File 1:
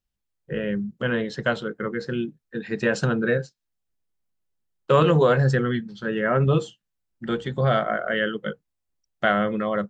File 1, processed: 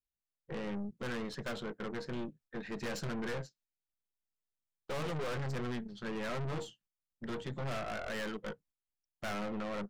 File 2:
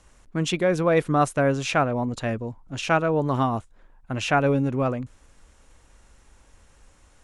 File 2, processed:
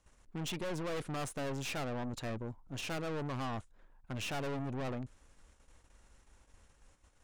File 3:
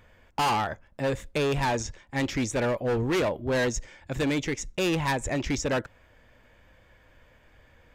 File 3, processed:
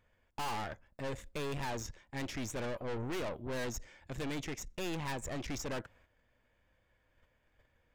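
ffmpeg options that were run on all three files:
-af "agate=range=0.398:threshold=0.002:ratio=16:detection=peak,aeval=exprs='(tanh(35.5*val(0)+0.6)-tanh(0.6))/35.5':c=same,volume=0.562"

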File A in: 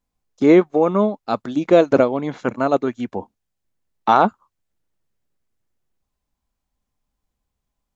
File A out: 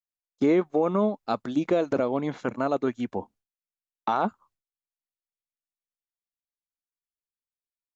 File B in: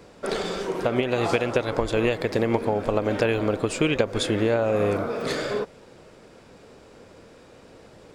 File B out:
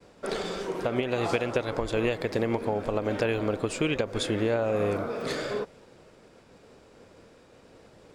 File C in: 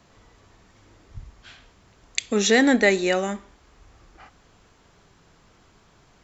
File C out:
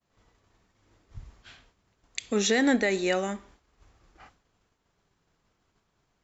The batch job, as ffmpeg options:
-af "agate=range=0.0224:threshold=0.00447:ratio=3:detection=peak,alimiter=limit=0.335:level=0:latency=1:release=75,volume=0.631"

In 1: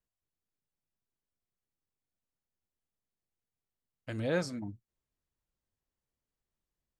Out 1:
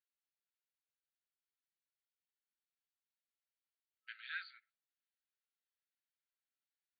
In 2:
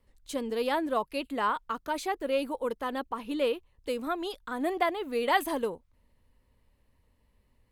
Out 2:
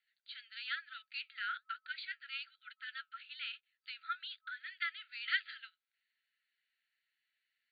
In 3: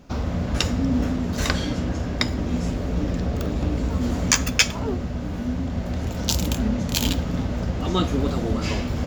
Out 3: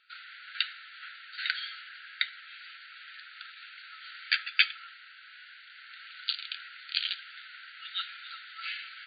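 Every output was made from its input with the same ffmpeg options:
-af "flanger=delay=2.9:depth=3.8:regen=-73:speed=1.1:shape=sinusoidal,afftfilt=real='re*between(b*sr/4096,1300,4700)':imag='im*between(b*sr/4096,1300,4700)':win_size=4096:overlap=0.75,volume=1.19"

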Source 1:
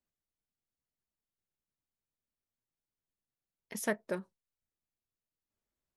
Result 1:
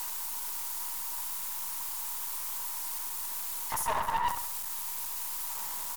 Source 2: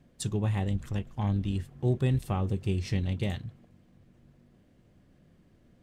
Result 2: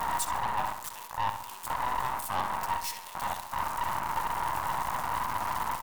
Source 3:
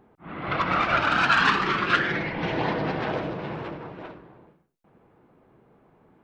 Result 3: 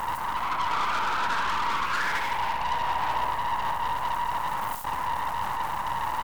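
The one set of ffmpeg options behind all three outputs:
-filter_complex "[0:a]aeval=exprs='val(0)+0.5*0.0422*sgn(val(0))':c=same,highpass=f=950:t=q:w=9.7,afwtdn=0.0631,highshelf=f=5300:g=8.5,areverse,acompressor=threshold=0.0355:ratio=4,areverse,aemphasis=mode=production:type=cd,aeval=exprs='(tanh(35.5*val(0)+0.5)-tanh(0.5))/35.5':c=same,asplit=2[s0][s1];[s1]adelay=67,lowpass=f=4900:p=1,volume=0.398,asplit=2[s2][s3];[s3]adelay=67,lowpass=f=4900:p=1,volume=0.47,asplit=2[s4][s5];[s5]adelay=67,lowpass=f=4900:p=1,volume=0.47,asplit=2[s6][s7];[s7]adelay=67,lowpass=f=4900:p=1,volume=0.47,asplit=2[s8][s9];[s9]adelay=67,lowpass=f=4900:p=1,volume=0.47[s10];[s0][s2][s4][s6][s8][s10]amix=inputs=6:normalize=0,volume=2.11"

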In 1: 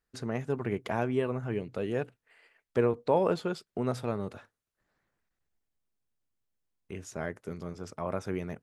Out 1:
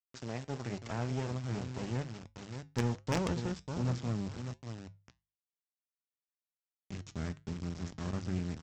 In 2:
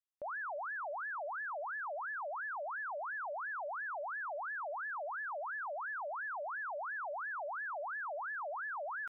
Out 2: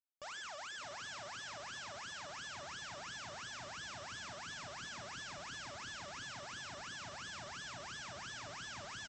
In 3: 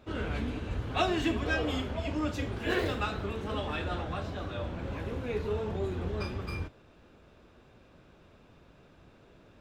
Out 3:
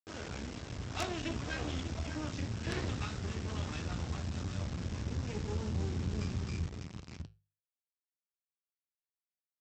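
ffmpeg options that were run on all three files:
-filter_complex "[0:a]asplit=2[s0][s1];[s1]adelay=594,lowpass=f=2700:p=1,volume=0.316,asplit=2[s2][s3];[s3]adelay=594,lowpass=f=2700:p=1,volume=0.2,asplit=2[s4][s5];[s5]adelay=594,lowpass=f=2700:p=1,volume=0.2[s6];[s0][s2][s4][s6]amix=inputs=4:normalize=0,aresample=16000,acrusher=bits=4:dc=4:mix=0:aa=0.000001,aresample=44100,flanger=delay=6.3:depth=2.9:regen=-79:speed=1.3:shape=triangular,asubboost=boost=5.5:cutoff=220,highpass=66,equalizer=f=5400:w=4.3:g=4,asoftclip=type=tanh:threshold=0.0841,bandreject=f=50:t=h:w=6,bandreject=f=100:t=h:w=6,bandreject=f=150:t=h:w=6"

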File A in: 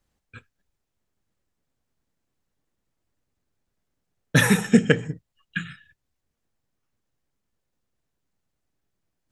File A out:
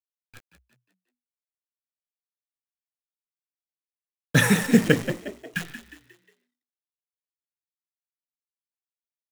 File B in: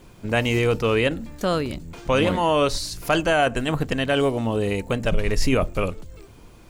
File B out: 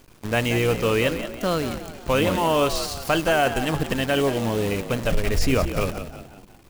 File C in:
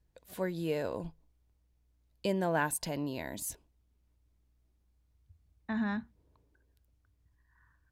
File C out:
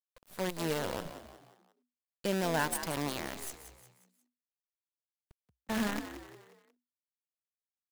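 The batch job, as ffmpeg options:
-filter_complex "[0:a]acrusher=bits=6:dc=4:mix=0:aa=0.000001,asplit=5[s0][s1][s2][s3][s4];[s1]adelay=179,afreqshift=61,volume=0.282[s5];[s2]adelay=358,afreqshift=122,volume=0.122[s6];[s3]adelay=537,afreqshift=183,volume=0.0519[s7];[s4]adelay=716,afreqshift=244,volume=0.0224[s8];[s0][s5][s6][s7][s8]amix=inputs=5:normalize=0,volume=0.891"

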